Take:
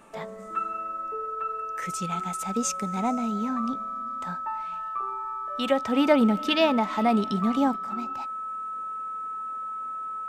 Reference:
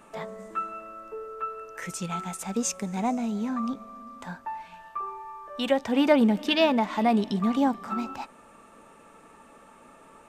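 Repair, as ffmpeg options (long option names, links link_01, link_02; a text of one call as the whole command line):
ffmpeg -i in.wav -af "bandreject=frequency=1300:width=30,asetnsamples=nb_out_samples=441:pad=0,asendcmd='7.76 volume volume 4.5dB',volume=0dB" out.wav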